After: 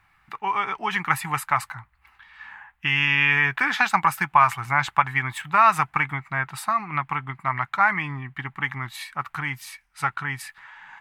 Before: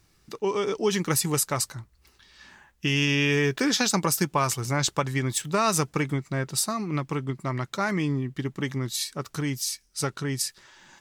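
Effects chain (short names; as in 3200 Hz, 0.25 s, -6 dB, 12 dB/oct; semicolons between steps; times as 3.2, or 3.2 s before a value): EQ curve 140 Hz 0 dB, 500 Hz -13 dB, 790 Hz +14 dB, 2200 Hz +14 dB, 5600 Hz -13 dB, 11000 Hz -5 dB; gain -4 dB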